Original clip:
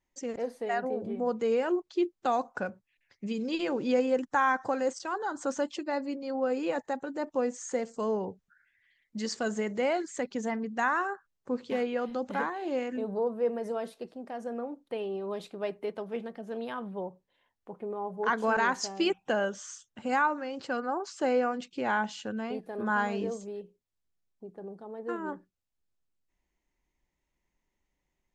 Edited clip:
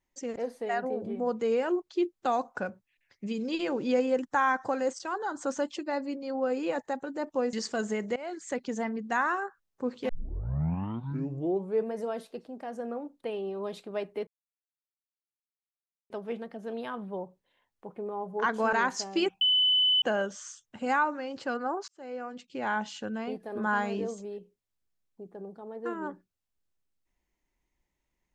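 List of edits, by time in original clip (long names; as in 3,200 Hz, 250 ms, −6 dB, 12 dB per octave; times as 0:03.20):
0:07.53–0:09.20: remove
0:09.83–0:10.17: fade in, from −22 dB
0:11.76: tape start 1.83 s
0:15.94: splice in silence 1.83 s
0:19.25: insert tone 3,010 Hz −20.5 dBFS 0.61 s
0:21.11–0:22.14: fade in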